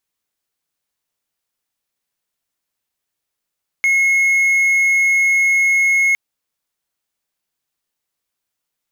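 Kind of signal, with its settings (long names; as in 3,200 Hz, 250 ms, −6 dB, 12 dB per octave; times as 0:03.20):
tone triangle 2,170 Hz −9.5 dBFS 2.31 s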